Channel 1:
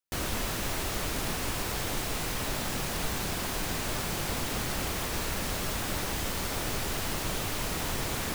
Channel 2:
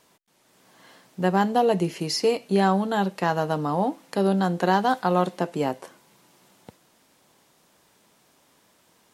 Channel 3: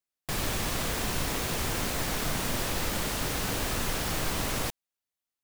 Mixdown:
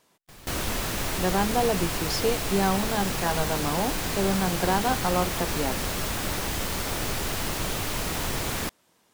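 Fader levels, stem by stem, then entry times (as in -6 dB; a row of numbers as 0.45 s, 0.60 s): +3.0 dB, -4.0 dB, -17.5 dB; 0.35 s, 0.00 s, 0.00 s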